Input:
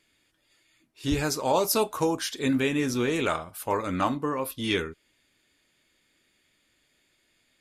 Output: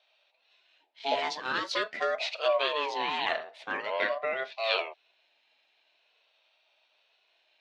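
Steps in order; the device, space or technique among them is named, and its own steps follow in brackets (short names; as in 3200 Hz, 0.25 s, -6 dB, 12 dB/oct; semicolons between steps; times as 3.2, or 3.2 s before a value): 3.81–4.57 LPF 7100 Hz 24 dB/oct; voice changer toy (ring modulator with a swept carrier 740 Hz, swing 25%, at 0.45 Hz; speaker cabinet 540–4600 Hz, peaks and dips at 640 Hz +9 dB, 1200 Hz -8 dB, 2500 Hz +7 dB, 3700 Hz +7 dB)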